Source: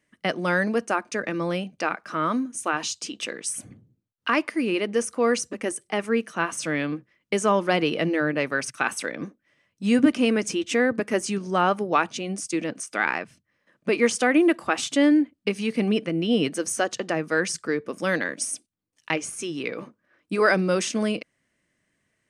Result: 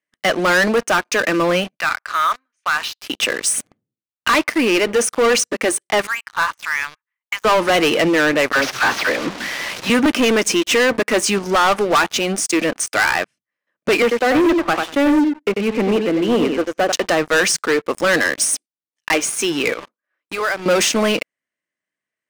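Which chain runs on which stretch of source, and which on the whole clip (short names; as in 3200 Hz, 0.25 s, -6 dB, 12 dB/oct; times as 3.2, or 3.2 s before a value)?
1.77–3.1 HPF 1300 Hz + air absorption 270 m
6.07–7.45 brick-wall FIR high-pass 830 Hz + tape spacing loss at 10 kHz 29 dB
8.52–9.9 delta modulation 32 kbps, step -34 dBFS + dispersion lows, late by 54 ms, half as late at 680 Hz
14.02–16.92 HPF 180 Hz 24 dB/oct + tape spacing loss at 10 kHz 43 dB + feedback echo 93 ms, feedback 16%, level -7.5 dB
19.73–20.66 HPF 470 Hz 6 dB/oct + compressor 2.5:1, threshold -38 dBFS
whole clip: HPF 710 Hz 6 dB/oct; high shelf 4100 Hz -6.5 dB; sample leveller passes 5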